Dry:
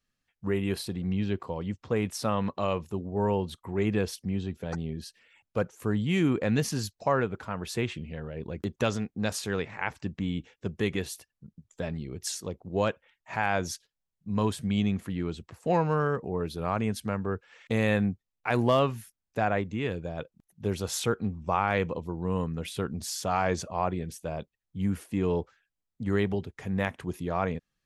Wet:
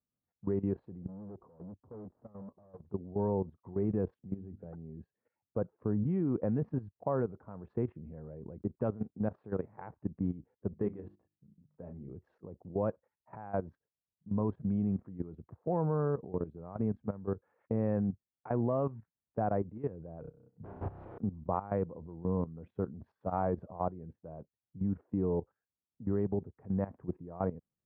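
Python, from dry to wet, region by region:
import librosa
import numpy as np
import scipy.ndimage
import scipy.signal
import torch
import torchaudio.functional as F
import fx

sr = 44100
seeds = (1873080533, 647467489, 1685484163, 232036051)

y = fx.chain(x, sr, fx.tube_stage(drive_db=42.0, bias=0.3),
    fx.lowpass(hz=1200.0, slope=12), at=(1.07, 2.85))
y = fx.chain(y, sr, fx.peak_eq(hz=990.0, db=-8.0, octaves=0.3),
    fx.hum_notches(base_hz=50, count=6), at=(4.27, 4.78))
y = fx.chain(y, sr, fx.hum_notches(base_hz=50, count=7),
    fx.doubler(ms=34.0, db=-9.0), at=(10.68, 12.13))
y = fx.chain(y, sr, fx.overflow_wrap(gain_db=30.0),
    fx.low_shelf(hz=120.0, db=9.0),
    fx.room_flutter(wall_m=5.4, rt60_s=0.79), at=(20.21, 21.18))
y = scipy.signal.sosfilt(scipy.signal.bessel(4, 720.0, 'lowpass', norm='mag', fs=sr, output='sos'), y)
y = fx.level_steps(y, sr, step_db=15)
y = scipy.signal.sosfilt(scipy.signal.butter(2, 72.0, 'highpass', fs=sr, output='sos'), y)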